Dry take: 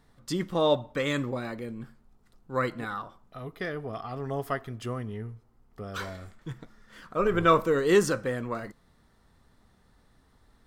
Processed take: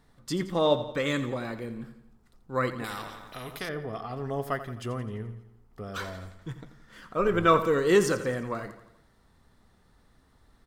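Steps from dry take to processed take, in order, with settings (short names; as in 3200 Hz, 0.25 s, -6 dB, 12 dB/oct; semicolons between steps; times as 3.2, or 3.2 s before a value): on a send: feedback echo 86 ms, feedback 53%, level -13 dB; 2.84–3.69 on the sum: spectral compressor 2:1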